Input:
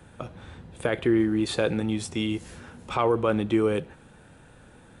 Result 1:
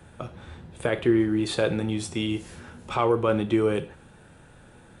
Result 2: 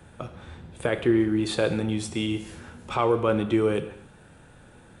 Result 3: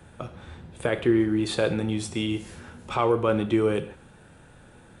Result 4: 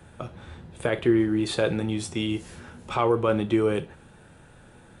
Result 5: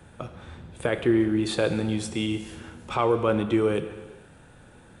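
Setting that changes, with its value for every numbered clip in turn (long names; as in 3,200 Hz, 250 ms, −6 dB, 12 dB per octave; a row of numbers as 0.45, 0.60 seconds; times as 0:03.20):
reverb whose tail is shaped and stops, gate: 130, 290, 200, 90, 500 milliseconds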